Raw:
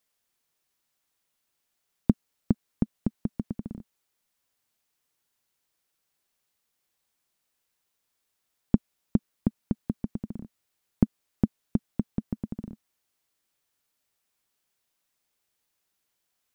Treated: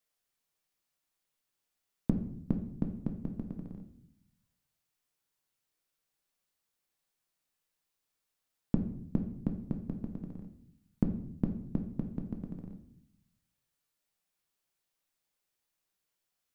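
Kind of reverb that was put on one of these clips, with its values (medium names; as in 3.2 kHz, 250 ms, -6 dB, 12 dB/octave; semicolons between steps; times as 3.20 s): simulated room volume 130 m³, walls mixed, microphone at 0.54 m; trim -7 dB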